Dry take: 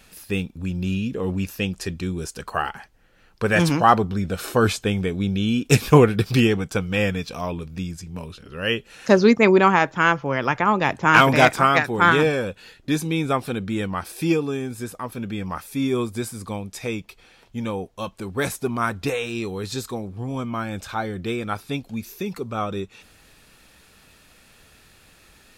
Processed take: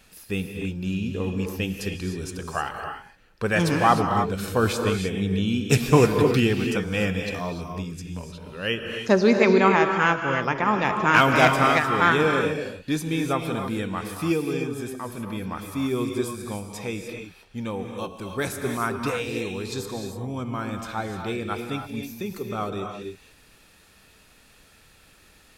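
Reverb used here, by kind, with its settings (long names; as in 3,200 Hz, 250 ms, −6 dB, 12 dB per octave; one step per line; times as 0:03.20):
reverb whose tail is shaped and stops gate 330 ms rising, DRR 4 dB
level −3.5 dB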